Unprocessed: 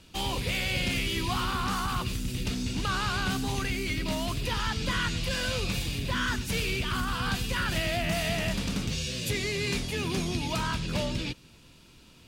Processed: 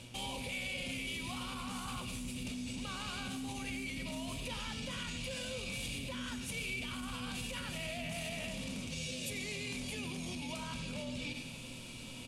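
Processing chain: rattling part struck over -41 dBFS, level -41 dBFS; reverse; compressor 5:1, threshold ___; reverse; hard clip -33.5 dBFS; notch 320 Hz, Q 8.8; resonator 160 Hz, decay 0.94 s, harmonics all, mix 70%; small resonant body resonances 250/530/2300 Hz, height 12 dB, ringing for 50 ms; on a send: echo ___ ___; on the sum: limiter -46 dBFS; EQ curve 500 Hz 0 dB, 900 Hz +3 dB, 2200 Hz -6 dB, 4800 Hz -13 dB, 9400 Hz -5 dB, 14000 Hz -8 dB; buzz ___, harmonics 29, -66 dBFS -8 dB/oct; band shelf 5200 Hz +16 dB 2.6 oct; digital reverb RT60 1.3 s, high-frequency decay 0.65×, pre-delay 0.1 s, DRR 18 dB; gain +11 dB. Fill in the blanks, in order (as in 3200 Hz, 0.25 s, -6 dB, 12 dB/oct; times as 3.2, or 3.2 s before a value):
-40 dBFS, 95 ms, -13.5 dB, 120 Hz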